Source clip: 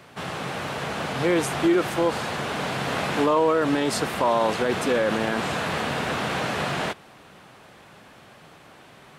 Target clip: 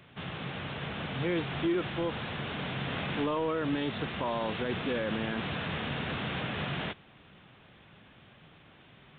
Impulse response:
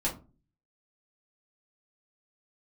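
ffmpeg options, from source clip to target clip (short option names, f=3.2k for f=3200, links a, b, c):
-af "equalizer=f=780:w=0.35:g=-11.5,asoftclip=type=tanh:threshold=-20.5dB,aresample=8000,aresample=44100"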